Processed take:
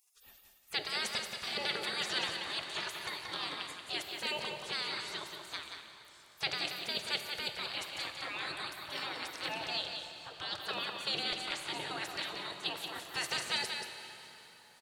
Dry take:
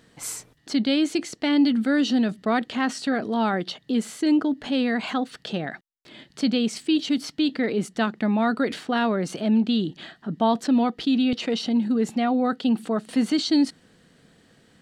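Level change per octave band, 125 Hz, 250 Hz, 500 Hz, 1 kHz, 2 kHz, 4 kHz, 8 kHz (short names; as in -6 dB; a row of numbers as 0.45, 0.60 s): -18.5, -31.0, -17.5, -12.5, -5.0, -2.5, -7.5 dB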